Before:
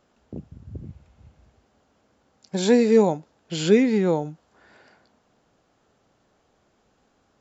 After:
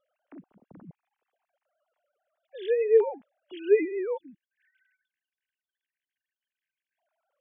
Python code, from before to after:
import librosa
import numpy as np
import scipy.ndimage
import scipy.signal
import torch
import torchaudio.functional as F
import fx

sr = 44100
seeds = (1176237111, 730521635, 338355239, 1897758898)

y = fx.sine_speech(x, sr)
y = fx.spec_erase(y, sr, start_s=4.17, length_s=2.81, low_hz=330.0, high_hz=1500.0)
y = y * librosa.db_to_amplitude(-6.0)